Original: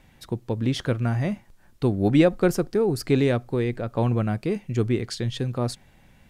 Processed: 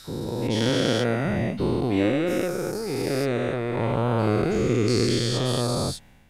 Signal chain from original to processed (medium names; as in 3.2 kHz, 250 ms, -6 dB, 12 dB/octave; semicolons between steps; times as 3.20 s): every event in the spectrogram widened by 480 ms; 0.69–1.25 s: high-pass 130 Hz; level rider; trim -8.5 dB